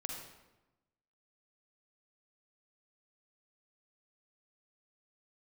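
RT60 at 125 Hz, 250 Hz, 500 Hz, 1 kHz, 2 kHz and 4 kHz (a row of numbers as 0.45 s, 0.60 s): 1.2 s, 1.2 s, 1.1 s, 1.0 s, 0.85 s, 0.75 s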